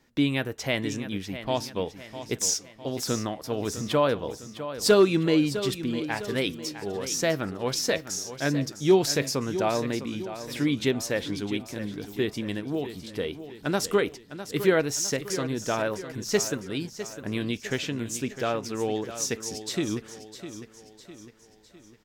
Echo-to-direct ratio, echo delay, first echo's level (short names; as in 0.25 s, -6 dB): -11.0 dB, 0.655 s, -12.0 dB